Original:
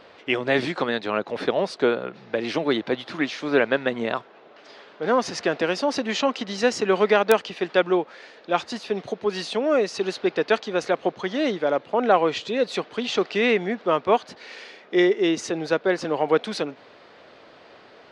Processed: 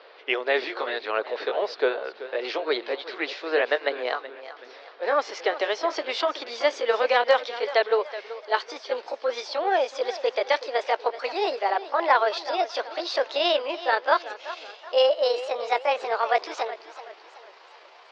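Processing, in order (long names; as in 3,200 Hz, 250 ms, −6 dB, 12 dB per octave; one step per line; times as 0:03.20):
pitch glide at a constant tempo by +8 semitones starting unshifted
elliptic band-pass filter 410–4,800 Hz, stop band 50 dB
feedback echo with a swinging delay time 378 ms, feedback 41%, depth 108 cents, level −14.5 dB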